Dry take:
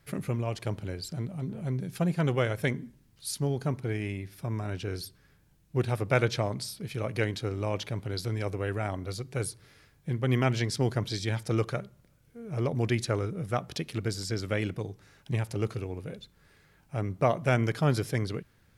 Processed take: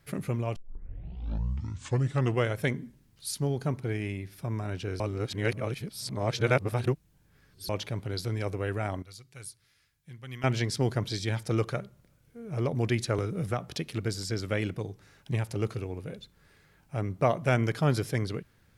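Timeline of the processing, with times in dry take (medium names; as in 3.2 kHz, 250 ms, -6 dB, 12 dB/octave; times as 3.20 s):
0.56 s: tape start 1.92 s
5.00–7.69 s: reverse
9.02–10.44 s: amplifier tone stack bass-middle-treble 5-5-5
13.18–13.60 s: three bands compressed up and down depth 100%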